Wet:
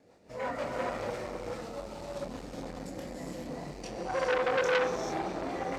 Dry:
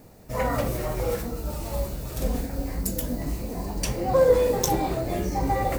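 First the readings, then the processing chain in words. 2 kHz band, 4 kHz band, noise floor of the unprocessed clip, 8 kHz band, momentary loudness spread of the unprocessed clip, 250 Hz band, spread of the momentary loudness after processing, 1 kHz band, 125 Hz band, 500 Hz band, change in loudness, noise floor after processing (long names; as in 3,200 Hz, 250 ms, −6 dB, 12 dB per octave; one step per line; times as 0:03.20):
+2.0 dB, −4.5 dB, −44 dBFS, −14.5 dB, 12 LU, −9.5 dB, 13 LU, −6.0 dB, −16.0 dB, −7.5 dB, −7.5 dB, −50 dBFS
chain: high-pass filter 430 Hz 6 dB per octave
rotating-speaker cabinet horn 6 Hz, later 1.2 Hz, at 0:01.94
multi-voice chorus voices 4, 1.4 Hz, delay 25 ms, depth 3 ms
high-frequency loss of the air 93 metres
reverb whose tail is shaped and stops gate 460 ms rising, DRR −2 dB
saturating transformer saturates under 2,100 Hz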